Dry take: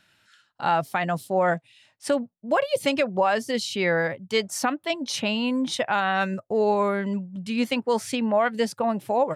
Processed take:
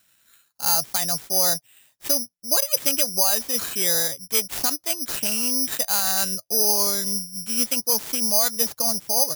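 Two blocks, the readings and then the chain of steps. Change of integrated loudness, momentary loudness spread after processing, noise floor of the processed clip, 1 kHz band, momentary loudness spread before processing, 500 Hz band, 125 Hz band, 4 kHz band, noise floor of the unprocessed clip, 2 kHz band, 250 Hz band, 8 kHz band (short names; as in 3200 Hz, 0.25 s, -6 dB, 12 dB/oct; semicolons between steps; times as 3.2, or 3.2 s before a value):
+4.5 dB, 6 LU, -67 dBFS, -7.5 dB, 5 LU, -7.5 dB, -7.5 dB, +7.0 dB, -68 dBFS, -6.5 dB, -7.5 dB, +17.5 dB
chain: careless resampling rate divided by 8×, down none, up zero stuff; gain -7.5 dB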